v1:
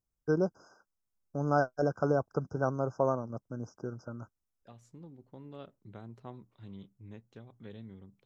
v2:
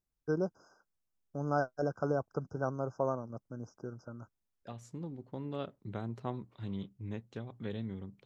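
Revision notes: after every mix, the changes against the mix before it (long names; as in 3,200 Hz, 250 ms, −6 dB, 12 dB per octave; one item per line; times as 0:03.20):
first voice −4.0 dB
second voice +8.0 dB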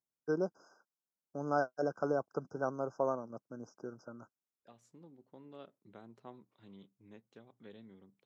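second voice −11.5 dB
master: add high-pass filter 220 Hz 12 dB per octave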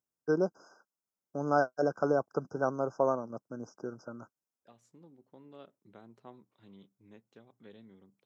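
first voice +5.0 dB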